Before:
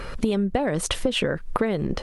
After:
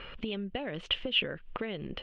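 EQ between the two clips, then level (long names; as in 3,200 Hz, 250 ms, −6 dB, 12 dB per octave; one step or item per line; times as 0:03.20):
dynamic equaliser 950 Hz, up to −4 dB, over −39 dBFS, Q 1.4
transistor ladder low-pass 3,200 Hz, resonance 70%
low-shelf EQ 230 Hz −3.5 dB
0.0 dB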